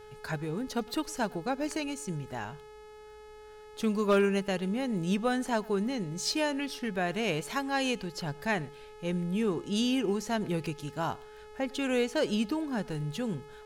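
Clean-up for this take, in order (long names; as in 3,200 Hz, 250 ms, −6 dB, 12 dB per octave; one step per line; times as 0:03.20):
clipped peaks rebuilt −17.5 dBFS
click removal
hum removal 425.9 Hz, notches 28
echo removal 108 ms −24 dB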